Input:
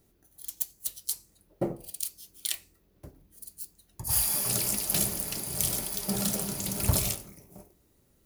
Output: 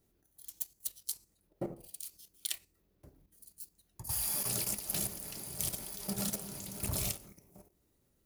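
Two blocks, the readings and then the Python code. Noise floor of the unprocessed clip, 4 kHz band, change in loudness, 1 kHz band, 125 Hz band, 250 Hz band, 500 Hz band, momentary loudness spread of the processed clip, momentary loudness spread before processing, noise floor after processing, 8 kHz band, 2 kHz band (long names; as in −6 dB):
−67 dBFS, −7.0 dB, −7.5 dB, −8.0 dB, −9.0 dB, −8.0 dB, −8.0 dB, 17 LU, 16 LU, −75 dBFS, −7.5 dB, −7.5 dB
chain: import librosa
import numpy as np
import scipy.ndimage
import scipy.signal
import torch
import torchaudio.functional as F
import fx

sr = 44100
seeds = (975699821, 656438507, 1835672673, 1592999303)

y = fx.level_steps(x, sr, step_db=10)
y = F.gain(torch.from_numpy(y), -4.0).numpy()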